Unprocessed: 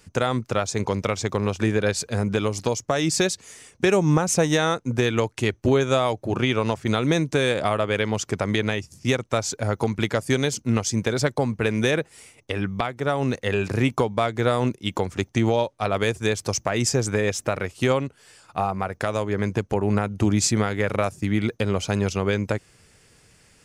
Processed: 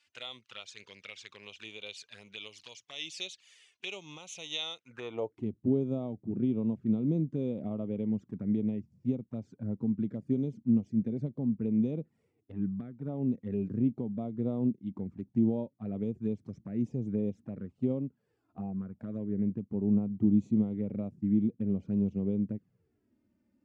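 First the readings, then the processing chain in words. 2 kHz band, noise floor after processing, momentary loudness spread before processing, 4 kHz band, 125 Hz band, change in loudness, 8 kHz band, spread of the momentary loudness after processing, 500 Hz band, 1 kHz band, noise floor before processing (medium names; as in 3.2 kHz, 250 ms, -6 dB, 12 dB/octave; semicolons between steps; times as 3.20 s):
under -20 dB, -77 dBFS, 6 LU, -13.5 dB, -11.0 dB, -9.0 dB, under -25 dB, 16 LU, -16.0 dB, -26.0 dB, -57 dBFS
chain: touch-sensitive flanger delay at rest 3.5 ms, full sweep at -18.5 dBFS; band-pass sweep 3.1 kHz -> 220 Hz, 4.81–5.48 s; harmonic-percussive split percussive -7 dB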